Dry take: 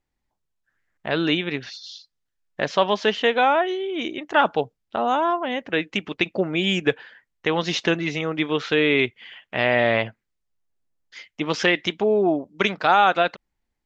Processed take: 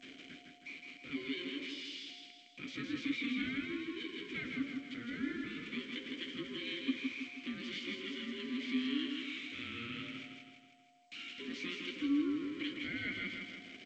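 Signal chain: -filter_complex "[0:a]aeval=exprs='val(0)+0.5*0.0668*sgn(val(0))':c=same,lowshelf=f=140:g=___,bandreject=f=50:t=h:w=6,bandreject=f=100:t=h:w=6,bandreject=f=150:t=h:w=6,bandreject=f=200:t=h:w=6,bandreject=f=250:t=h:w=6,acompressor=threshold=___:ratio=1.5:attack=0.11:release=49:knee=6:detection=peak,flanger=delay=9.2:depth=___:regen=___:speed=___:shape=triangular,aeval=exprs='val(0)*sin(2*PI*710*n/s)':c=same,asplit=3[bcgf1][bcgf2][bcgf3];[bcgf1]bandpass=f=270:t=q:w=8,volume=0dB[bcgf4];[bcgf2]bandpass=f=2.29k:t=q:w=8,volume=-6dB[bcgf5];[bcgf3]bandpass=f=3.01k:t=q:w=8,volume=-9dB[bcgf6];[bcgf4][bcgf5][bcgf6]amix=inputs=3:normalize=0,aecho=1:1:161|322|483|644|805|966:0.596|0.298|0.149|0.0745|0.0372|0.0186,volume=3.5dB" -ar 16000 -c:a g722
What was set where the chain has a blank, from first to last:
-3.5, -28dB, 8.4, -31, 1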